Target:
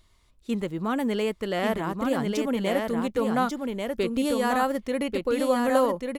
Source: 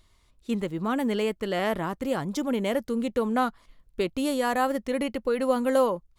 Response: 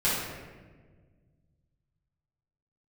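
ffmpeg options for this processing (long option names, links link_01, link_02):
-af "aecho=1:1:1141:0.631"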